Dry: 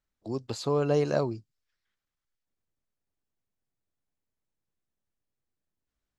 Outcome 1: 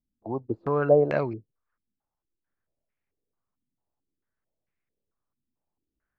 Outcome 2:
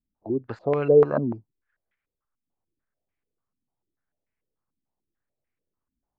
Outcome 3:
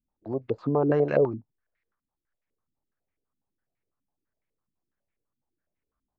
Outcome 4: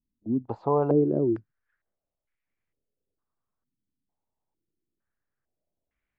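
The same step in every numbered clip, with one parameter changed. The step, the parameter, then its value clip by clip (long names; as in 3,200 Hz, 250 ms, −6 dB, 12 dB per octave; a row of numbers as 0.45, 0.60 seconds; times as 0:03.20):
low-pass on a step sequencer, speed: 4.5, 6.8, 12, 2.2 Hertz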